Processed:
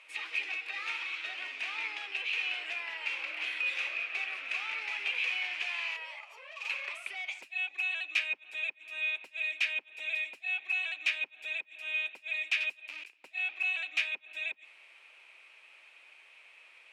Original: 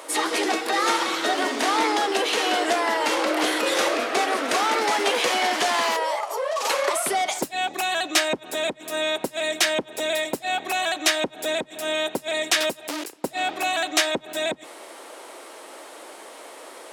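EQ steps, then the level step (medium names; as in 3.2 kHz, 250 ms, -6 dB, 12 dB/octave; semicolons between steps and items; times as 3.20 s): band-pass filter 2.5 kHz, Q 11; +2.5 dB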